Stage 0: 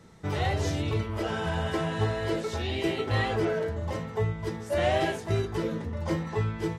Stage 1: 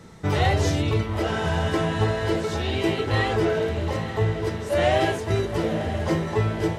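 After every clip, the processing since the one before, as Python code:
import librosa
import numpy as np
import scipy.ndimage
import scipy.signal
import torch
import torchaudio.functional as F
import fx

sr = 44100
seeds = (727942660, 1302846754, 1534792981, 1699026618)

y = fx.echo_diffused(x, sr, ms=908, feedback_pct=55, wet_db=-10.0)
y = fx.rider(y, sr, range_db=10, speed_s=2.0)
y = y * librosa.db_to_amplitude(4.5)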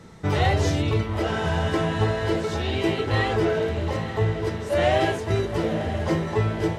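y = fx.high_shelf(x, sr, hz=8300.0, db=-4.5)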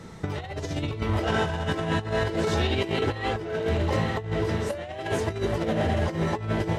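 y = fx.over_compress(x, sr, threshold_db=-26.0, ratio=-0.5)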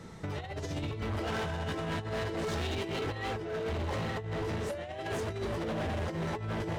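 y = np.clip(10.0 ** (26.5 / 20.0) * x, -1.0, 1.0) / 10.0 ** (26.5 / 20.0)
y = y * librosa.db_to_amplitude(-4.5)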